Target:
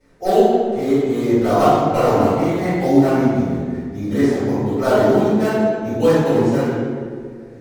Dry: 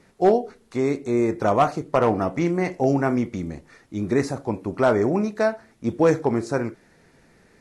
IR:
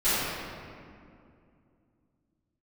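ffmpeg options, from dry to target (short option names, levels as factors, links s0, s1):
-filter_complex "[0:a]asplit=2[s0][s1];[s1]acrusher=samples=10:mix=1:aa=0.000001:lfo=1:lforange=6:lforate=3.7,volume=0.501[s2];[s0][s2]amix=inputs=2:normalize=0,atempo=1[s3];[1:a]atrim=start_sample=2205,asetrate=61740,aresample=44100[s4];[s3][s4]afir=irnorm=-1:irlink=0,volume=0.266"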